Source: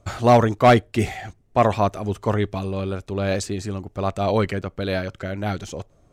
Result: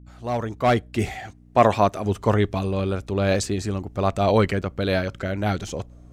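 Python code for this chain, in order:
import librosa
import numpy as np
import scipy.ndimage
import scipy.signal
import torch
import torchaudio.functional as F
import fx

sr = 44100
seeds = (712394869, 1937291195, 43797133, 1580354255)

y = fx.fade_in_head(x, sr, length_s=1.67)
y = fx.add_hum(y, sr, base_hz=60, snr_db=23)
y = fx.low_shelf(y, sr, hz=77.0, db=-11.5, at=(1.19, 2.06))
y = y * 10.0 ** (2.0 / 20.0)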